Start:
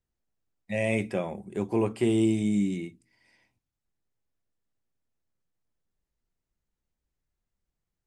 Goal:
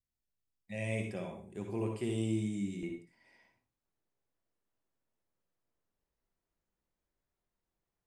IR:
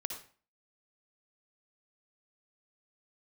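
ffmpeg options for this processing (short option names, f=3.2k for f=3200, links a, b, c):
-filter_complex "[0:a]asetnsamples=n=441:p=0,asendcmd='2.83 equalizer g 9',equalizer=f=690:w=0.31:g=-5[a];[1:a]atrim=start_sample=2205,afade=t=out:st=0.23:d=0.01,atrim=end_sample=10584[b];[a][b]afir=irnorm=-1:irlink=0,volume=-6.5dB"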